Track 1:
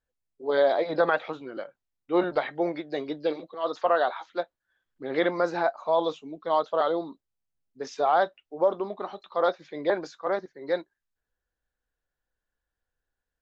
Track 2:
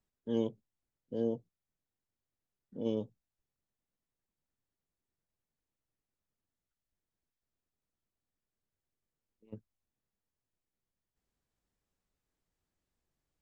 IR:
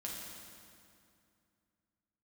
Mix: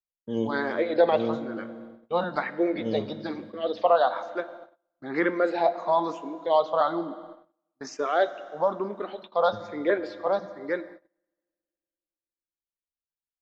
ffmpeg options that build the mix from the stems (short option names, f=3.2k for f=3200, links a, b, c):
-filter_complex "[0:a]asplit=2[a][b];[b]afreqshift=1.1[c];[a][c]amix=inputs=2:normalize=1,volume=2.5dB,asplit=2[d][e];[e]volume=-10dB[f];[1:a]lowshelf=f=110:g=4,volume=-0.5dB,asplit=2[g][h];[h]volume=-3.5dB[i];[2:a]atrim=start_sample=2205[j];[f][i]amix=inputs=2:normalize=0[k];[k][j]afir=irnorm=-1:irlink=0[l];[d][g][l]amix=inputs=3:normalize=0,agate=range=-30dB:threshold=-43dB:ratio=16:detection=peak"